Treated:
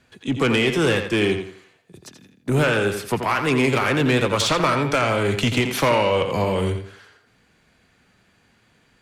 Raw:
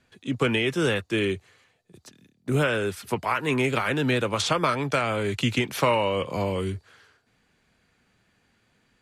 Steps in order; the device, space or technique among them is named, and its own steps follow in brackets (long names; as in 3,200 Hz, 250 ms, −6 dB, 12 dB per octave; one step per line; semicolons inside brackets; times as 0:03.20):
rockabilly slapback (tube saturation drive 19 dB, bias 0.25; tape delay 85 ms, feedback 34%, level −6 dB, low-pass 4,900 Hz)
level +6.5 dB